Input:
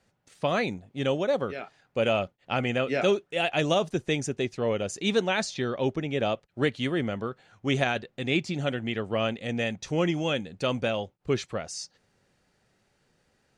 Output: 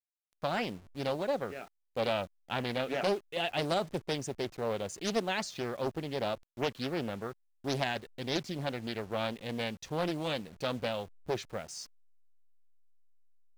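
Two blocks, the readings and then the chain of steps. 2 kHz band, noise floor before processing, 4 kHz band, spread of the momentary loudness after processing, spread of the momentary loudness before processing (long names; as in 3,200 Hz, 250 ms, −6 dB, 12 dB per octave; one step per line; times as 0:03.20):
−7.5 dB, −71 dBFS, −5.0 dB, 7 LU, 7 LU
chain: hold until the input has moved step −44 dBFS
highs frequency-modulated by the lows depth 0.59 ms
level −6 dB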